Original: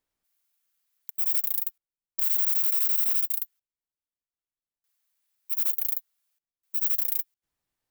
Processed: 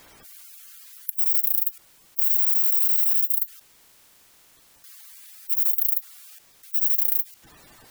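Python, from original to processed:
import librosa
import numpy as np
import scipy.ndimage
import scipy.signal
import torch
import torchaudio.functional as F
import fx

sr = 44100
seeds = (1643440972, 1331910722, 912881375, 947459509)

y = fx.spec_quant(x, sr, step_db=30)
y = fx.env_flatten(y, sr, amount_pct=50)
y = y * librosa.db_to_amplitude(4.0)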